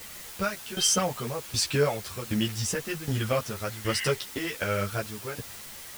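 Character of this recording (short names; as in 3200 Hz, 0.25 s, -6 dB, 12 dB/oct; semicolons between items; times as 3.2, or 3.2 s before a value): tremolo saw down 1.3 Hz, depth 85%; a quantiser's noise floor 8-bit, dither triangular; a shimmering, thickened sound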